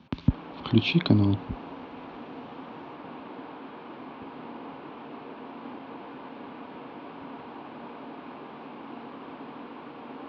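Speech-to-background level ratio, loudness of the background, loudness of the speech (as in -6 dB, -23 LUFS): 17.0 dB, -42.0 LUFS, -25.0 LUFS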